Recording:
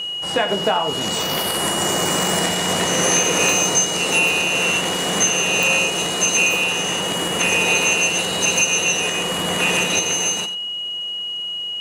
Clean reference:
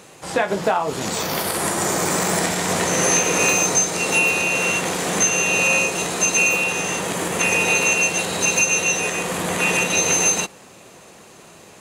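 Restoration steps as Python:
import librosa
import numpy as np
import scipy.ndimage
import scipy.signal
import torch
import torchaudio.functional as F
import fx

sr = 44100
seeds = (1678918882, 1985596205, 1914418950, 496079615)

y = fx.fix_declick_ar(x, sr, threshold=10.0)
y = fx.notch(y, sr, hz=2900.0, q=30.0)
y = fx.fix_echo_inverse(y, sr, delay_ms=91, level_db=-13.0)
y = fx.fix_level(y, sr, at_s=9.99, step_db=4.5)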